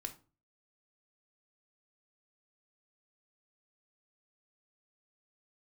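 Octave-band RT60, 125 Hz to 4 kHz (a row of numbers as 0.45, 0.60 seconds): 0.55, 0.45, 0.40, 0.35, 0.25, 0.25 seconds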